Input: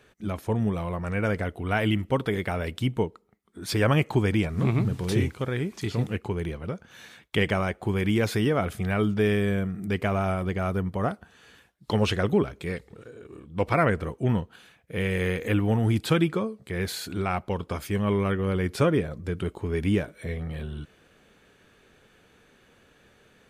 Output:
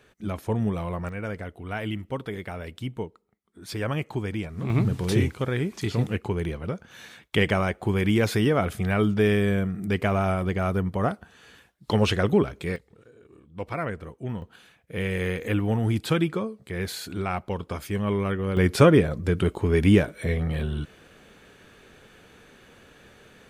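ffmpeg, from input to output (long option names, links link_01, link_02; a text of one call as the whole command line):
ffmpeg -i in.wav -af "asetnsamples=nb_out_samples=441:pad=0,asendcmd='1.09 volume volume -6.5dB;4.7 volume volume 2dB;12.76 volume volume -8dB;14.42 volume volume -1dB;18.57 volume volume 6.5dB',volume=0dB" out.wav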